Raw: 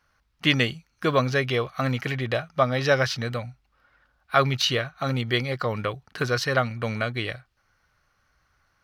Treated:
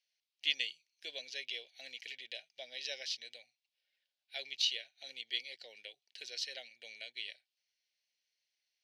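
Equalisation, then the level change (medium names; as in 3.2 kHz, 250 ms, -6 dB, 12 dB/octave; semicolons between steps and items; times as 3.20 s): band-pass 740–3000 Hz; Butterworth band-stop 1.2 kHz, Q 0.5; differentiator; +5.0 dB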